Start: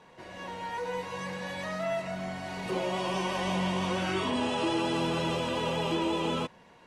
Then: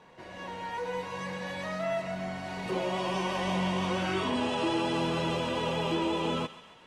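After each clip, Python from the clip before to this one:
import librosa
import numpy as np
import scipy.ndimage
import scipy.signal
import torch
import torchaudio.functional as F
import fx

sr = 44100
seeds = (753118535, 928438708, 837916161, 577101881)

y = fx.high_shelf(x, sr, hz=7100.0, db=-5.0)
y = fx.echo_thinned(y, sr, ms=135, feedback_pct=63, hz=790.0, wet_db=-14.0)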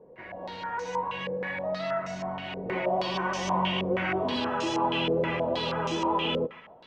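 y = fx.filter_held_lowpass(x, sr, hz=6.3, low_hz=480.0, high_hz=6200.0)
y = y * librosa.db_to_amplitude(-1.0)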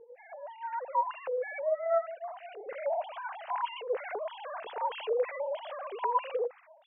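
y = fx.sine_speech(x, sr)
y = fx.lowpass(y, sr, hz=2100.0, slope=6)
y = y * librosa.db_to_amplitude(-4.0)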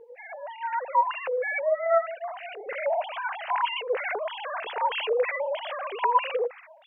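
y = fx.peak_eq(x, sr, hz=2300.0, db=9.5, octaves=1.8)
y = y * librosa.db_to_amplitude(3.5)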